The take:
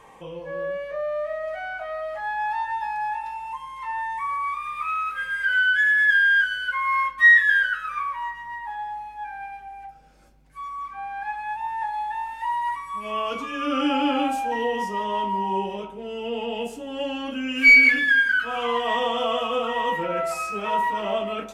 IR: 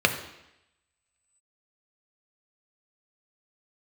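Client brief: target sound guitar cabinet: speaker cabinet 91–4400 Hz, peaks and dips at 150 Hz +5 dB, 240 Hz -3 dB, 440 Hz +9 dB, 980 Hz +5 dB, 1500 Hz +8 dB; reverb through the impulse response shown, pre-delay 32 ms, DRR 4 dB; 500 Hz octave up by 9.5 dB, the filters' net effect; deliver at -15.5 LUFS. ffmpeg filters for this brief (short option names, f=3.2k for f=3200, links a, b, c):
-filter_complex "[0:a]equalizer=f=500:t=o:g=5.5,asplit=2[a][b];[1:a]atrim=start_sample=2205,adelay=32[c];[b][c]afir=irnorm=-1:irlink=0,volume=-20.5dB[d];[a][d]amix=inputs=2:normalize=0,highpass=91,equalizer=f=150:t=q:w=4:g=5,equalizer=f=240:t=q:w=4:g=-3,equalizer=f=440:t=q:w=4:g=9,equalizer=f=980:t=q:w=4:g=5,equalizer=f=1.5k:t=q:w=4:g=8,lowpass=f=4.4k:w=0.5412,lowpass=f=4.4k:w=1.3066,volume=0.5dB"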